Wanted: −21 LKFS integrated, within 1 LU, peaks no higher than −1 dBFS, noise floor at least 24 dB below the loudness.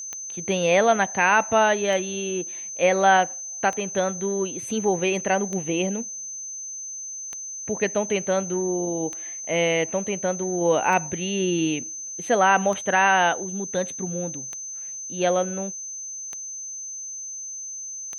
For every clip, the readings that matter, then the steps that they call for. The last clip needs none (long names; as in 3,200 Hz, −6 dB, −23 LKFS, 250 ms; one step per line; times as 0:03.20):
number of clicks 11; interfering tone 6,200 Hz; level of the tone −32 dBFS; integrated loudness −24.0 LKFS; sample peak −5.5 dBFS; target loudness −21.0 LKFS
→ click removal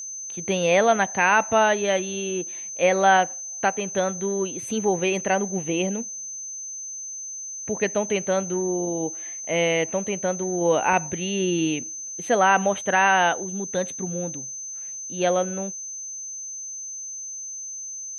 number of clicks 0; interfering tone 6,200 Hz; level of the tone −32 dBFS
→ notch filter 6,200 Hz, Q 30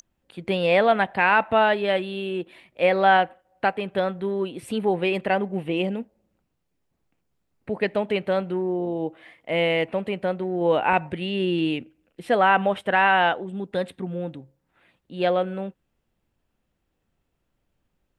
interfering tone none found; integrated loudness −23.5 LKFS; sample peak −5.5 dBFS; target loudness −21.0 LKFS
→ level +2.5 dB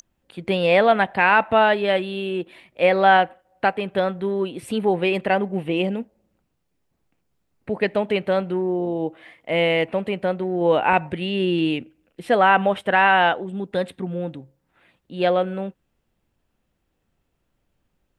integrated loudness −21.0 LKFS; sample peak −3.0 dBFS; background noise floor −73 dBFS